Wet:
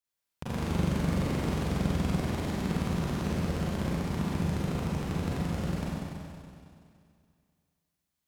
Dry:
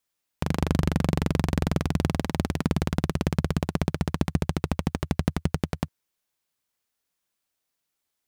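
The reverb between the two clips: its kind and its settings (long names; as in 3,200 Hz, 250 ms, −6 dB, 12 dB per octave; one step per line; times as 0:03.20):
four-comb reverb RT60 2.3 s, combs from 32 ms, DRR −8.5 dB
level −12.5 dB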